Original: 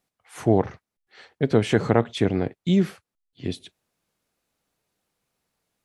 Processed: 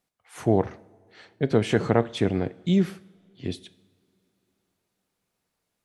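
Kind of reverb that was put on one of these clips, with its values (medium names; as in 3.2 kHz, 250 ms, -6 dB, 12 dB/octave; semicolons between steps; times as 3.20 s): two-slope reverb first 0.7 s, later 3.4 s, from -19 dB, DRR 16.5 dB; trim -2 dB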